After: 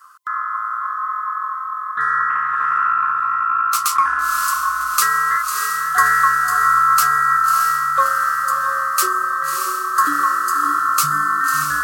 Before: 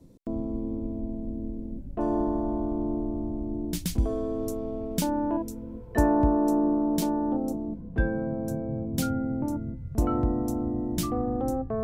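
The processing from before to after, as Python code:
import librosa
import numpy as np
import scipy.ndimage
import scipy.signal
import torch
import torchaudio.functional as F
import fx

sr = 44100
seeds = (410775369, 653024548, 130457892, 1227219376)

p1 = fx.band_swap(x, sr, width_hz=1000)
p2 = scipy.signal.sosfilt(scipy.signal.butter(4, 73.0, 'highpass', fs=sr, output='sos'), p1)
p3 = fx.high_shelf(p2, sr, hz=3400.0, db=12.0)
p4 = p3 + fx.echo_diffused(p3, sr, ms=620, feedback_pct=56, wet_db=-4, dry=0)
p5 = fx.doppler_dist(p4, sr, depth_ms=0.12, at=(2.29, 4.22))
y = p5 * librosa.db_to_amplitude(5.5)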